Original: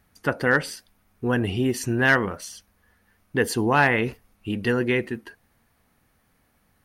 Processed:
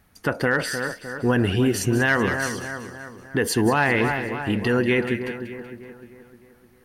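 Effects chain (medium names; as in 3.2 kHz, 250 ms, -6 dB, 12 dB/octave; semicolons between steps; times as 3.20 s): two-band feedback delay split 1.7 kHz, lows 305 ms, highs 189 ms, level -11 dB; peak limiter -15 dBFS, peak gain reduction 7 dB; trim +4 dB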